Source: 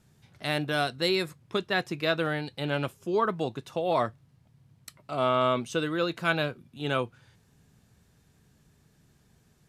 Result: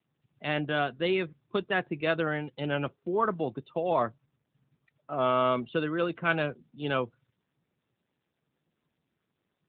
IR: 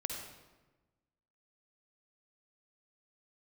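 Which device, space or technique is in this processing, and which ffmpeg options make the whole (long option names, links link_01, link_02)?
mobile call with aggressive noise cancelling: -af "highpass=120,afftdn=noise_reduction=29:noise_floor=-42" -ar 8000 -c:a libopencore_amrnb -b:a 10200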